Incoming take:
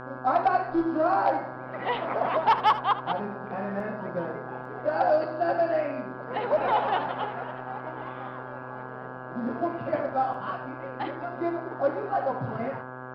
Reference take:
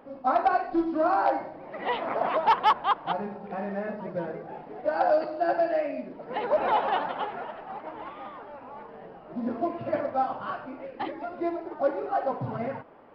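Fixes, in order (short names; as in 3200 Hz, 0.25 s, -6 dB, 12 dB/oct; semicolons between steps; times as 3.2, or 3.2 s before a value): de-hum 127.6 Hz, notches 13; interpolate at 3.8/4.65/10.34, 2.4 ms; inverse comb 76 ms -14.5 dB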